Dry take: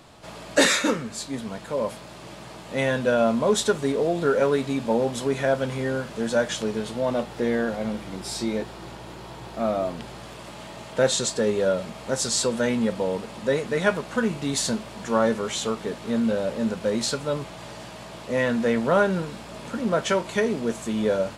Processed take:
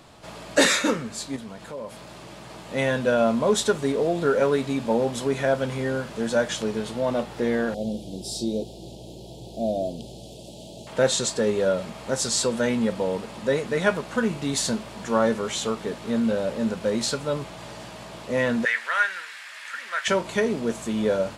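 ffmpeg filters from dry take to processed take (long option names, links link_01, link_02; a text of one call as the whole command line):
ffmpeg -i in.wav -filter_complex "[0:a]asettb=1/sr,asplit=3[link_01][link_02][link_03];[link_01]atrim=end=1.364[link_04];[link_02]atrim=start=1.36:end=2.5,asetpts=PTS-STARTPTS,afade=type=in:duration=0.004:curve=qsin,afade=type=out:start_time=1.136:duration=0.004:curve=qsin,acompressor=threshold=-38dB:ratio=2:attack=3.2:release=140:knee=1:detection=peak[link_05];[link_03]atrim=start=2.496[link_06];[link_04][link_05]acrossfade=duration=0.004:curve1=hsin:curve2=qsin[link_07];[link_07][link_06]acrossfade=duration=0.004:curve1=qsin:curve2=hsin,asettb=1/sr,asplit=3[link_08][link_09][link_10];[link_08]atrim=end=7.744[link_11];[link_09]atrim=start=7.74:end=10.87,asetpts=PTS-STARTPTS,afade=type=in:duration=0.004:curve=qsin,afade=type=out:start_time=3.126:duration=0.004:curve=qsin,asuperstop=centerf=1500:order=8:qfactor=0.62[link_12];[link_10]atrim=start=10.866[link_13];[link_11][link_12]acrossfade=duration=0.004:curve1=hsin:curve2=qsin[link_14];[link_14][link_13]acrossfade=duration=0.004:curve1=qsin:curve2=hsin,asettb=1/sr,asplit=3[link_15][link_16][link_17];[link_15]atrim=end=18.654[link_18];[link_16]atrim=start=18.65:end=20.08,asetpts=PTS-STARTPTS,afade=type=in:duration=0.004:curve=qsin,afade=type=out:start_time=1.426:duration=0.004:curve=qsin,highpass=frequency=1800:width_type=q:width=4.2[link_19];[link_17]atrim=start=20.076[link_20];[link_18][link_19]acrossfade=duration=0.004:curve1=hsin:curve2=qsin[link_21];[link_21][link_20]acrossfade=duration=0.004:curve1=qsin:curve2=hsin" out.wav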